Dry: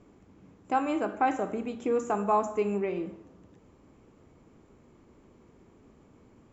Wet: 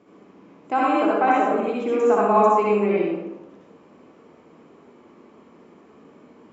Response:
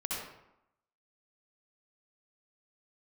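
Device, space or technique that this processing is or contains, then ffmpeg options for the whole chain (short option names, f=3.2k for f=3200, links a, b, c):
supermarket ceiling speaker: -filter_complex "[0:a]highpass=240,lowpass=5.2k[a];[1:a]atrim=start_sample=2205[b];[a][b]afir=irnorm=-1:irlink=0,volume=6.5dB"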